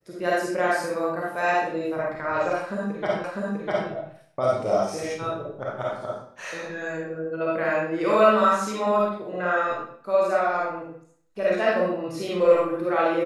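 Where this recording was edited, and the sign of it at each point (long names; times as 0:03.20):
0:03.24: the same again, the last 0.65 s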